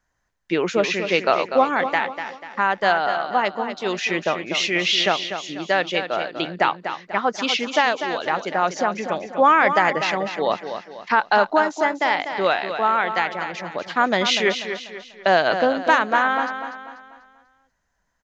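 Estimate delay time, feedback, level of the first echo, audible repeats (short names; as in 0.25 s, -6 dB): 0.245 s, 41%, -9.0 dB, 4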